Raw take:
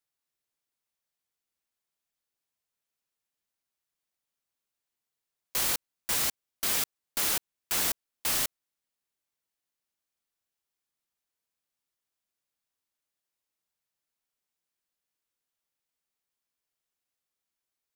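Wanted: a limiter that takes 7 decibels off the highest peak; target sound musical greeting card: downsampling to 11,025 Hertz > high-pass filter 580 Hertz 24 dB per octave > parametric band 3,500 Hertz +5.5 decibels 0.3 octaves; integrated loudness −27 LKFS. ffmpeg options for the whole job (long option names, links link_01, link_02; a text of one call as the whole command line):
ffmpeg -i in.wav -af "alimiter=limit=-21.5dB:level=0:latency=1,aresample=11025,aresample=44100,highpass=frequency=580:width=0.5412,highpass=frequency=580:width=1.3066,equalizer=frequency=3500:width_type=o:width=0.3:gain=5.5,volume=11.5dB" out.wav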